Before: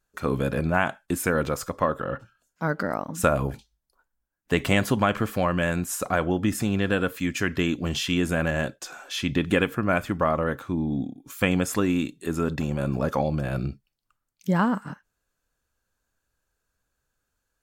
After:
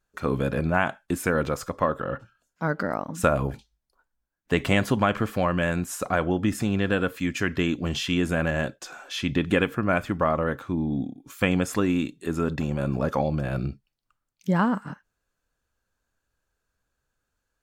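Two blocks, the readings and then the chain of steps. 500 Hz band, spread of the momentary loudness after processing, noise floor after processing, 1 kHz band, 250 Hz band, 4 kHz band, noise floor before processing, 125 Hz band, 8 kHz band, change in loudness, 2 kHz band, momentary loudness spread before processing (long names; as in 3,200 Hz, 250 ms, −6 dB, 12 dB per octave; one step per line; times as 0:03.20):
0.0 dB, 8 LU, −81 dBFS, 0.0 dB, 0.0 dB, −1.0 dB, −80 dBFS, 0.0 dB, −3.5 dB, 0.0 dB, −0.5 dB, 8 LU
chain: high-shelf EQ 7,500 Hz −7 dB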